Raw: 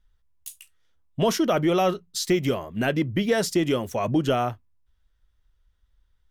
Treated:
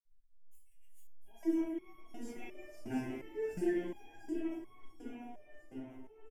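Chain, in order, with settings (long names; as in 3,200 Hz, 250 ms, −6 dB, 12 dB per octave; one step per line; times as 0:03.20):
feedback delay that plays each chunk backwards 349 ms, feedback 68%, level −1 dB
phaser with its sweep stopped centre 820 Hz, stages 8
phase shifter 1.4 Hz, delay 3 ms, feedback 56%
0:03.08–0:03.56: frequency shifter −39 Hz
echo with shifted repeats 369 ms, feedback 49%, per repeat +96 Hz, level −18 dB
convolution reverb RT60 0.75 s, pre-delay 46 ms
step-sequenced resonator 2.8 Hz 130–1,100 Hz
level +6 dB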